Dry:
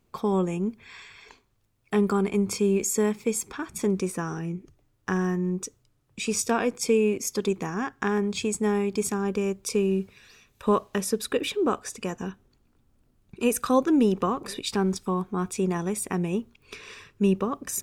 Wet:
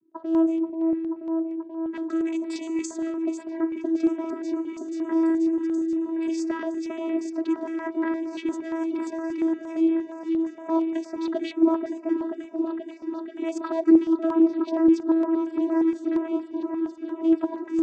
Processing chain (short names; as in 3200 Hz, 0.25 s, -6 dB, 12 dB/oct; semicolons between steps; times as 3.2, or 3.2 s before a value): low-pass opened by the level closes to 500 Hz, open at -20 dBFS; 2.2–2.85 tilt +4 dB/oct; in parallel at +3 dB: compressor, threshold -36 dBFS, peak gain reduction 19.5 dB; on the sum: overloaded stage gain 14 dB; vocoder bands 16, saw 326 Hz; on a send: repeats that get brighter 0.483 s, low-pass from 750 Hz, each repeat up 1 oct, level -3 dB; on the sum: stepped notch 8.6 Hz 680–6300 Hz